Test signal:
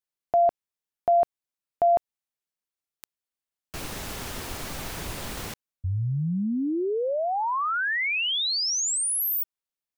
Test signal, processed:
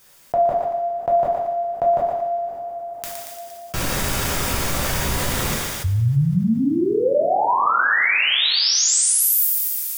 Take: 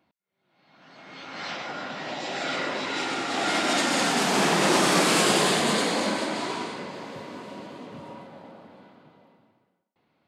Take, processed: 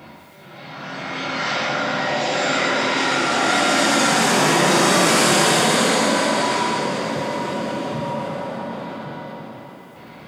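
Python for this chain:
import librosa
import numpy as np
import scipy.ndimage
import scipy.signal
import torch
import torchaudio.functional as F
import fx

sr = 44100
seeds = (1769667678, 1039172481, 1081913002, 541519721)

p1 = fx.peak_eq(x, sr, hz=2900.0, db=-2.0, octaves=0.77)
p2 = fx.notch(p1, sr, hz=4100.0, q=14.0)
p3 = fx.quant_float(p2, sr, bits=8)
p4 = p3 + fx.echo_thinned(p3, sr, ms=116, feedback_pct=55, hz=1100.0, wet_db=-6.5, dry=0)
p5 = fx.rev_double_slope(p4, sr, seeds[0], early_s=0.72, late_s=3.0, knee_db=-18, drr_db=-4.5)
p6 = fx.env_flatten(p5, sr, amount_pct=50)
y = F.gain(torch.from_numpy(p6), -1.0).numpy()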